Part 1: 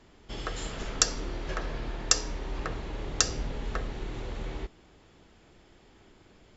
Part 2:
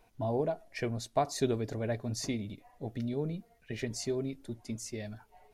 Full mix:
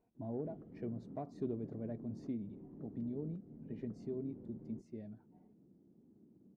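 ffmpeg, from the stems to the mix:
ffmpeg -i stem1.wav -i stem2.wav -filter_complex "[0:a]acompressor=threshold=-36dB:ratio=12,bandpass=frequency=200:width_type=q:width=1.4:csg=0,adelay=150,volume=1.5dB[link_01];[1:a]asoftclip=type=tanh:threshold=-21dB,volume=-4dB[link_02];[link_01][link_02]amix=inputs=2:normalize=0,bandpass=frequency=230:width_type=q:width=1.2:csg=0" out.wav

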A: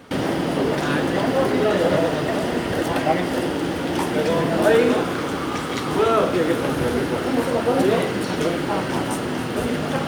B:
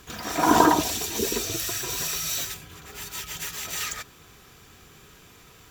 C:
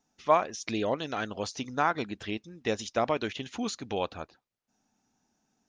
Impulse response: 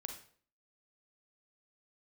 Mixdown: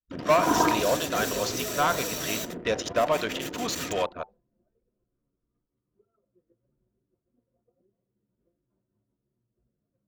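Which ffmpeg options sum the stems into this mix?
-filter_complex "[0:a]acompressor=threshold=-19dB:ratio=20,flanger=delay=9.6:depth=8.1:regen=62:speed=1:shape=sinusoidal,volume=-7.5dB,afade=type=out:start_time=3.8:duration=0.47:silence=0.223872[link_01];[1:a]agate=range=-7dB:threshold=-47dB:ratio=16:detection=peak,volume=-6dB,asplit=2[link_02][link_03];[link_03]volume=-16dB[link_04];[2:a]lowshelf=frequency=430:width_type=q:width=1.5:gain=-7,asoftclip=type=tanh:threshold=-18.5dB,volume=2.5dB,asplit=2[link_05][link_06];[link_06]volume=-5.5dB[link_07];[3:a]atrim=start_sample=2205[link_08];[link_04][link_07]amix=inputs=2:normalize=0[link_09];[link_09][link_08]afir=irnorm=-1:irlink=0[link_10];[link_01][link_02][link_05][link_10]amix=inputs=4:normalize=0,agate=range=-33dB:threshold=-43dB:ratio=3:detection=peak,anlmdn=10,asuperstop=centerf=820:order=20:qfactor=7.9"

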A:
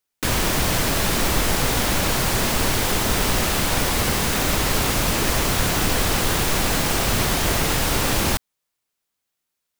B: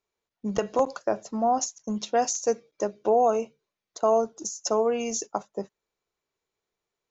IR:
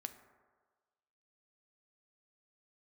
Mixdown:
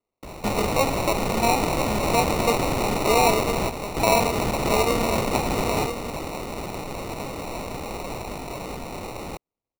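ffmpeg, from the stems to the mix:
-filter_complex "[0:a]acrossover=split=420[link_01][link_02];[link_01]acompressor=threshold=-31dB:ratio=6[link_03];[link_03][link_02]amix=inputs=2:normalize=0,equalizer=frequency=14000:width=0.51:gain=-13.5,acontrast=51,volume=-7dB,asplit=3[link_04][link_05][link_06];[link_05]volume=-12.5dB[link_07];[link_06]volume=-7.5dB[link_08];[1:a]bandreject=frequency=50:width_type=h:width=6,bandreject=frequency=100:width_type=h:width=6,bandreject=frequency=150:width_type=h:width=6,bandreject=frequency=200:width_type=h:width=6,bandreject=frequency=250:width_type=h:width=6,bandreject=frequency=300:width_type=h:width=6,bandreject=frequency=350:width_type=h:width=6,bandreject=frequency=400:width_type=h:width=6,bandreject=frequency=450:width_type=h:width=6,volume=0.5dB,asplit=3[link_09][link_10][link_11];[link_10]volume=-8dB[link_12];[link_11]apad=whole_len=431750[link_13];[link_04][link_13]sidechaingate=range=-20dB:threshold=-57dB:ratio=16:detection=peak[link_14];[2:a]atrim=start_sample=2205[link_15];[link_07][link_15]afir=irnorm=-1:irlink=0[link_16];[link_08][link_12]amix=inputs=2:normalize=0,aecho=0:1:999:1[link_17];[link_14][link_09][link_16][link_17]amix=inputs=4:normalize=0,acrusher=samples=27:mix=1:aa=0.000001"

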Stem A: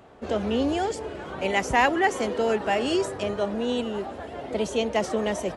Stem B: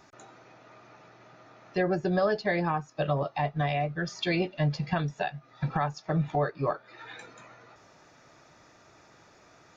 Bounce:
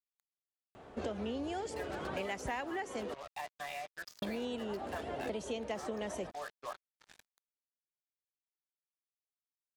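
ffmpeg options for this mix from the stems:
ffmpeg -i stem1.wav -i stem2.wav -filter_complex "[0:a]adelay=750,volume=-2.5dB,asplit=3[link_01][link_02][link_03];[link_01]atrim=end=3.14,asetpts=PTS-STARTPTS,afade=type=out:start_time=3.136:duration=0.004:curve=hsin[link_04];[link_02]atrim=start=3.14:end=4.22,asetpts=PTS-STARTPTS,volume=0[link_05];[link_03]atrim=start=4.22,asetpts=PTS-STARTPTS,afade=type=in:duration=0.004:curve=hsin[link_06];[link_04][link_05][link_06]concat=n=3:v=0:a=1[link_07];[1:a]highpass=800,acrusher=bits=5:mix=0:aa=0.5,volume=-9dB[link_08];[link_07][link_08]amix=inputs=2:normalize=0,acompressor=threshold=-35dB:ratio=10" out.wav

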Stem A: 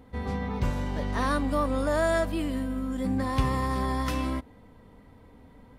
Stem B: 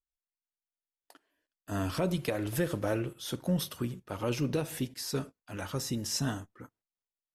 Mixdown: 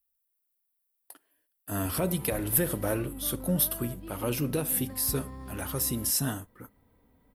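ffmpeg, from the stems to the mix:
ffmpeg -i stem1.wav -i stem2.wav -filter_complex "[0:a]acrossover=split=440[link_01][link_02];[link_02]acompressor=threshold=-37dB:ratio=6[link_03];[link_01][link_03]amix=inputs=2:normalize=0,adelay=1700,volume=-12.5dB[link_04];[1:a]aexciter=amount=6.2:drive=6.2:freq=9000,volume=1dB[link_05];[link_04][link_05]amix=inputs=2:normalize=0" out.wav

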